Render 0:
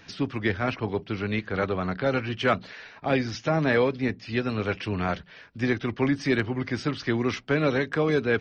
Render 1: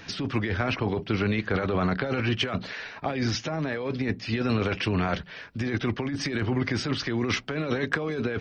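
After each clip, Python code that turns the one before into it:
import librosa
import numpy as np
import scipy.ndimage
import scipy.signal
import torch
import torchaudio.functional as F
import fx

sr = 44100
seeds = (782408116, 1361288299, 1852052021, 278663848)

y = fx.over_compress(x, sr, threshold_db=-29.0, ratio=-1.0)
y = F.gain(torch.from_numpy(y), 2.5).numpy()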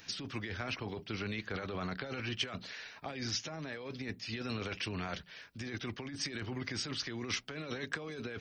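y = scipy.signal.lfilter([1.0, -0.8], [1.0], x)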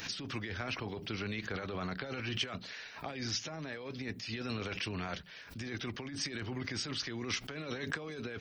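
y = fx.pre_swell(x, sr, db_per_s=95.0)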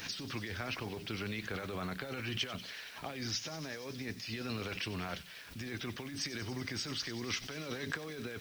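y = fx.echo_wet_highpass(x, sr, ms=94, feedback_pct=83, hz=2800.0, wet_db=-12.5)
y = fx.quant_dither(y, sr, seeds[0], bits=10, dither='triangular')
y = F.gain(torch.from_numpy(y), -1.0).numpy()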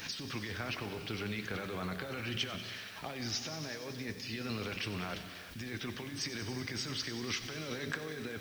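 y = fx.rev_gated(x, sr, seeds[1], gate_ms=420, shape='flat', drr_db=8.0)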